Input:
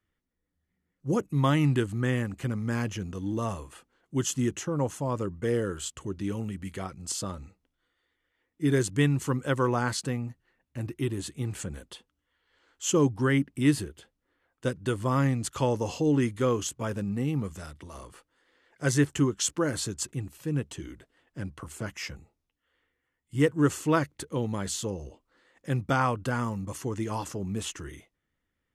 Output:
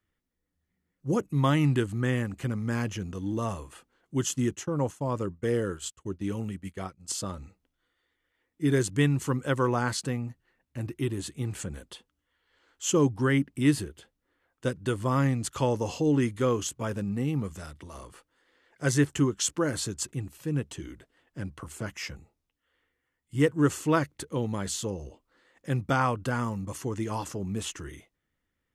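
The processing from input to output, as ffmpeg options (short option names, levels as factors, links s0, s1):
-filter_complex "[0:a]asettb=1/sr,asplit=3[s0][s1][s2];[s0]atrim=end=4.294[s3];[s1]atrim=start=4.29:end=7.25,asetpts=PTS-STARTPTS,afade=t=in:d=0.004:c=qsin,afade=t=out:st=2.956:d=0.004:c=qsin,agate=range=0.0224:threshold=0.0178:ratio=3:release=100:detection=peak[s4];[s2]atrim=start=7.246[s5];[s3][s4]acrossfade=d=0.004:c1=hsin:c2=qsin[s6];[s6][s5]acrossfade=d=0.004:c1=qsin:c2=hsin"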